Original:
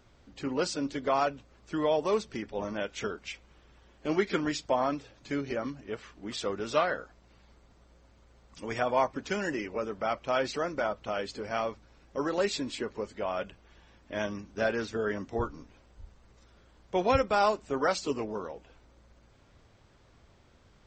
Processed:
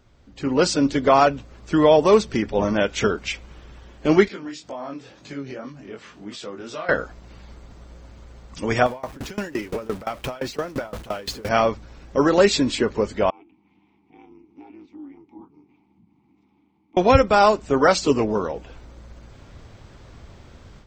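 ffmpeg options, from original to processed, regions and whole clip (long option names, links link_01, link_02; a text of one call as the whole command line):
ffmpeg -i in.wav -filter_complex "[0:a]asettb=1/sr,asplit=3[link_01][link_02][link_03];[link_01]atrim=end=4.284[link_04];[link_02]atrim=start=4.28:end=6.89,asetpts=PTS-STARTPTS,afade=type=in:duration=0.004:curve=qsin,afade=type=out:start_time=2.606:duration=0.004:curve=qsin,highpass=130,acompressor=threshold=-51dB:ratio=2:attack=3.2:release=140:knee=1:detection=peak,flanger=delay=19:depth=4.8:speed=2[link_05];[link_03]atrim=start=6.886[link_06];[link_04][link_05]acrossfade=duration=0.004:curve1=hsin:curve2=qsin[link_07];[link_07][link_06]acrossfade=duration=0.004:curve1=qsin:curve2=hsin,asettb=1/sr,asplit=3[link_08][link_09][link_10];[link_08]atrim=end=8.864[link_11];[link_09]atrim=start=8.86:end=11.49,asetpts=PTS-STARTPTS,afade=type=in:duration=0.004:curve=qsin,afade=type=out:start_time=2.626:duration=0.004:curve=qsin,aeval=exprs='val(0)+0.5*0.0119*sgn(val(0))':channel_layout=same,acompressor=threshold=-31dB:ratio=8:attack=3.2:release=140:knee=1:detection=peak,aeval=exprs='val(0)*pow(10,-23*if(lt(mod(5.8*n/s,1),2*abs(5.8)/1000),1-mod(5.8*n/s,1)/(2*abs(5.8)/1000),(mod(5.8*n/s,1)-2*abs(5.8)/1000)/(1-2*abs(5.8)/1000))/20)':channel_layout=same[link_12];[link_10]atrim=start=11.486[link_13];[link_11][link_12]acrossfade=duration=0.004:curve1=hsin:curve2=qsin[link_14];[link_14][link_13]acrossfade=duration=0.004:curve1=qsin:curve2=hsin,asettb=1/sr,asplit=3[link_15][link_16][link_17];[link_15]atrim=end=13.304[link_18];[link_16]atrim=start=13.3:end=16.97,asetpts=PTS-STARTPTS,afade=type=in:duration=0.004:curve=qsin,afade=type=out:start_time=3.666:duration=0.004:curve=qsin,acompressor=threshold=-52dB:ratio=2:attack=3.2:release=140:knee=1:detection=peak,aeval=exprs='val(0)*sin(2*PI*140*n/s)':channel_layout=same,asplit=3[link_19][link_20][link_21];[link_19]bandpass=frequency=300:width_type=q:width=8,volume=0dB[link_22];[link_20]bandpass=frequency=870:width_type=q:width=8,volume=-6dB[link_23];[link_21]bandpass=frequency=2240:width_type=q:width=8,volume=-9dB[link_24];[link_22][link_23][link_24]amix=inputs=3:normalize=0[link_25];[link_17]atrim=start=16.966[link_26];[link_18][link_25]acrossfade=duration=0.004:curve1=hsin:curve2=qsin[link_27];[link_27][link_26]acrossfade=duration=0.004:curve1=qsin:curve2=hsin,lowshelf=frequency=260:gain=5,dynaudnorm=framelen=330:gausssize=3:maxgain=12.5dB" out.wav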